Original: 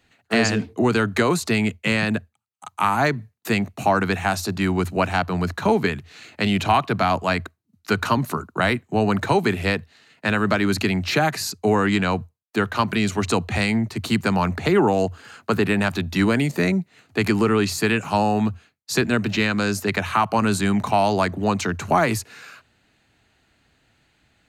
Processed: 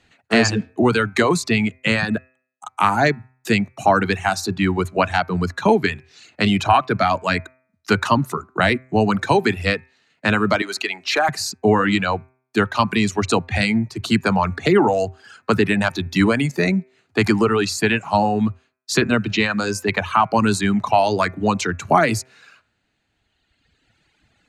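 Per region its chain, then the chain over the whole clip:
0:10.62–0:11.29: high-pass filter 480 Hz + de-essing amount 45% + hard clipping −12 dBFS
whole clip: low-pass filter 9,000 Hz 12 dB per octave; hum removal 128.9 Hz, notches 20; reverb reduction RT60 2 s; level +4 dB

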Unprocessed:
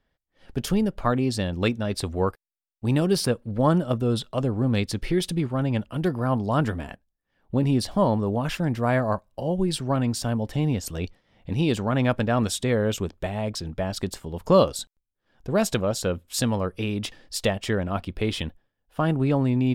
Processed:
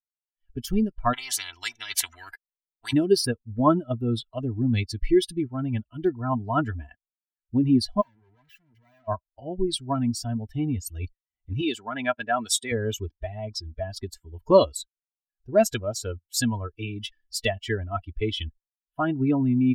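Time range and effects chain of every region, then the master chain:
0:01.13–0:02.93: high-shelf EQ 7,200 Hz −8 dB + every bin compressed towards the loudest bin 10 to 1
0:08.01–0:09.08: high-pass filter 54 Hz 24 dB per octave + tube saturation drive 40 dB, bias 0.55
0:11.61–0:12.72: high-pass filter 350 Hz 6 dB per octave + high-shelf EQ 3,600 Hz +4 dB
whole clip: spectral dynamics exaggerated over time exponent 2; notch filter 2,500 Hz, Q 20; comb filter 3 ms, depth 65%; level +4 dB

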